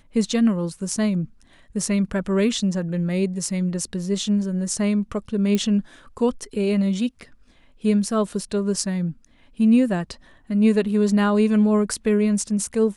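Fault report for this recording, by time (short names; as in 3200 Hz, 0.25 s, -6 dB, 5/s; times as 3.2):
5.55 pop -10 dBFS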